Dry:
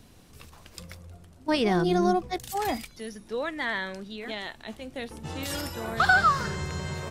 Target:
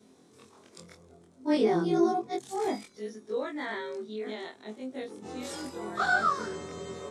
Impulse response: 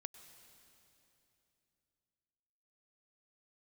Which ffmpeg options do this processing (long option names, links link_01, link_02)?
-af "afftfilt=real='re':imag='-im':win_size=2048:overlap=0.75,highpass=220,equalizer=frequency=250:width_type=q:width=4:gain=7,equalizer=frequency=400:width_type=q:width=4:gain=10,equalizer=frequency=1700:width_type=q:width=4:gain=-4,equalizer=frequency=2800:width_type=q:width=4:gain=-9,equalizer=frequency=4700:width_type=q:width=4:gain=-4,lowpass=frequency=9500:width=0.5412,lowpass=frequency=9500:width=1.3066"